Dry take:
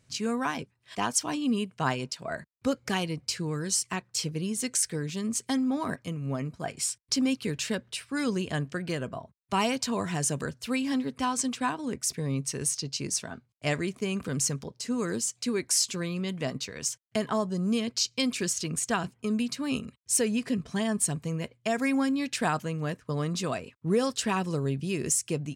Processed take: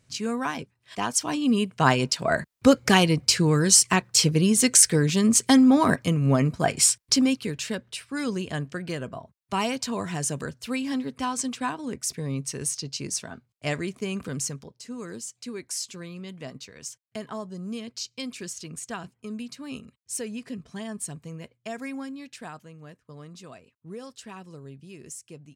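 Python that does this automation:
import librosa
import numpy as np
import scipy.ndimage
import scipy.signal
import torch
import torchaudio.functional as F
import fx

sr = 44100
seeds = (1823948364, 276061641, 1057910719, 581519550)

y = fx.gain(x, sr, db=fx.line((1.04, 1.0), (2.2, 11.0), (6.87, 11.0), (7.53, 0.0), (14.24, 0.0), (14.8, -7.0), (21.73, -7.0), (22.63, -14.0)))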